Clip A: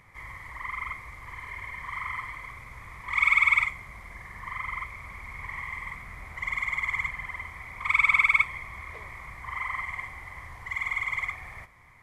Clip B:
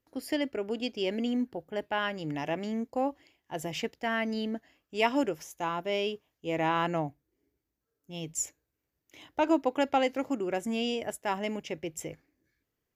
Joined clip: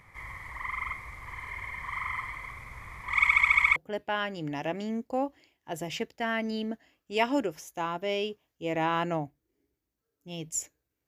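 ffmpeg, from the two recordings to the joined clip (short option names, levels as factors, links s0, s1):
-filter_complex "[0:a]apad=whole_dur=11.07,atrim=end=11.07,asplit=8[s0][s1][s2][s3][s4][s5][s6][s7];[s0]atrim=end=3.272[s8];[s1]atrim=start=3.198:end=3.272[s9];[s2]atrim=start=3.198:end=3.272[s10];[s3]atrim=start=3.198:end=3.272[s11];[s4]atrim=start=3.198:end=3.272[s12];[s5]atrim=start=3.198:end=3.272[s13];[s6]atrim=start=3.198:end=3.272[s14];[s7]atrim=start=3.198:end=3.272[s15];[1:a]atrim=start=1.588:end=8.9[s16];[s8][s9]acrossfade=d=0.004:c1=hsin:c2=hsin[s17];[s17][s10]acrossfade=d=0.004:c1=hsin:c2=hsin[s18];[s18][s11]acrossfade=d=0.004:c1=hsin:c2=hsin[s19];[s19][s12]acrossfade=d=0.004:c1=hsin:c2=hsin[s20];[s20][s13]acrossfade=d=0.004:c1=hsin:c2=hsin[s21];[s21][s14]acrossfade=d=0.004:c1=hsin:c2=hsin[s22];[s22][s15]acrossfade=d=0.004:c1=hsin:c2=hsin[s23];[s23][s16]acrossfade=d=0.004:c1=hsin:c2=hsin"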